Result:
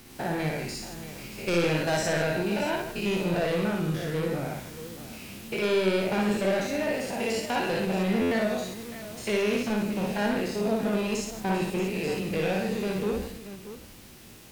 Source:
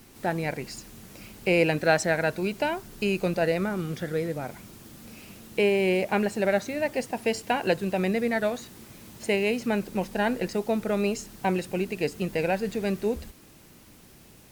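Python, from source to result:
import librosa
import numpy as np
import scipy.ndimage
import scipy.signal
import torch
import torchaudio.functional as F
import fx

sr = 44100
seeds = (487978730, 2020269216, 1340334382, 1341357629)

p1 = fx.spec_steps(x, sr, hold_ms=100)
p2 = fx.peak_eq(p1, sr, hz=3300.0, db=3.0, octaves=1.6)
p3 = 10.0 ** (-26.0 / 20.0) * np.tanh(p2 / 10.0 ** (-26.0 / 20.0))
p4 = p3 + fx.echo_multitap(p3, sr, ms=(58, 155, 632), db=(-3.0, -10.5, -12.5), dry=0)
p5 = fx.buffer_glitch(p4, sr, at_s=(8.21,), block=512, repeats=8)
y = p5 * 10.0 ** (2.5 / 20.0)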